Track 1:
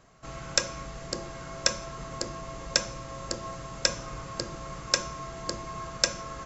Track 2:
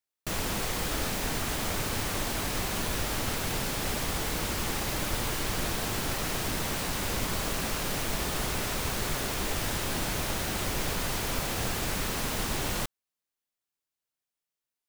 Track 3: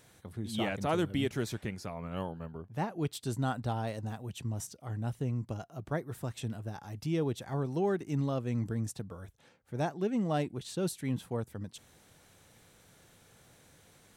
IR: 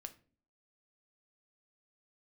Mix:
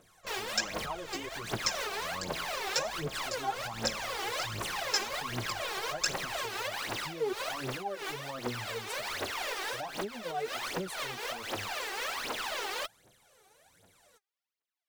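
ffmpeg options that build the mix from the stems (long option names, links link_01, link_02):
-filter_complex "[0:a]aecho=1:1:5.6:0.95,flanger=delay=16:depth=3.6:speed=1.9,volume=-9.5dB[link_01];[1:a]acrossover=split=310 5000:gain=0.0891 1 0.251[link_02][link_03][link_04];[link_02][link_03][link_04]amix=inputs=3:normalize=0,volume=-3dB[link_05];[2:a]equalizer=frequency=590:width_type=o:width=1.6:gain=6,asplit=2[link_06][link_07];[link_07]adelay=8.7,afreqshift=0.95[link_08];[link_06][link_08]amix=inputs=2:normalize=1,volume=-3.5dB,asplit=2[link_09][link_10];[link_10]apad=whole_len=656631[link_11];[link_05][link_11]sidechaincompress=threshold=-40dB:ratio=8:attack=16:release=161[link_12];[link_12][link_09]amix=inputs=2:normalize=0,alimiter=level_in=4dB:limit=-24dB:level=0:latency=1:release=141,volume=-4dB,volume=0dB[link_13];[link_01][link_13]amix=inputs=2:normalize=0,lowshelf=frequency=250:gain=-11.5,aphaser=in_gain=1:out_gain=1:delay=2.7:decay=0.78:speed=1.3:type=triangular"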